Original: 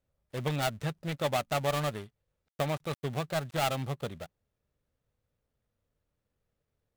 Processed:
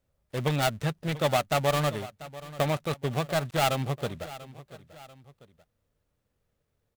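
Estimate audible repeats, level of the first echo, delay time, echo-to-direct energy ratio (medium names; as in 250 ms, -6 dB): 2, -17.0 dB, 690 ms, -16.0 dB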